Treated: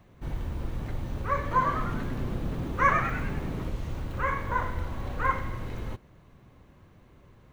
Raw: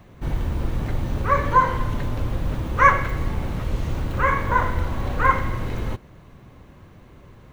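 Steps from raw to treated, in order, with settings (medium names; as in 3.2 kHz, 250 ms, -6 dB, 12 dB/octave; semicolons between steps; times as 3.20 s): 1.41–3.70 s: frequency-shifting echo 100 ms, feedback 49%, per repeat +120 Hz, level -5.5 dB; trim -8.5 dB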